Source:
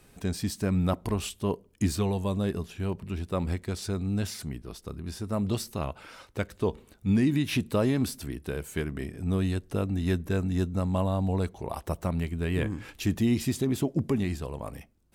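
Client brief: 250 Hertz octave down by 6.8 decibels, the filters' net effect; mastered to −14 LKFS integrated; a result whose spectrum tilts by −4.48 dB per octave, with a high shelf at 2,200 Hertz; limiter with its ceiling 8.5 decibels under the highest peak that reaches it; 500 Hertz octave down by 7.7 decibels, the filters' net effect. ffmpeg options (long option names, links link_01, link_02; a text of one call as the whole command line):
ffmpeg -i in.wav -af "equalizer=frequency=250:width_type=o:gain=-7.5,equalizer=frequency=500:width_type=o:gain=-8,highshelf=frequency=2200:gain=8.5,volume=19.5dB,alimiter=limit=-2dB:level=0:latency=1" out.wav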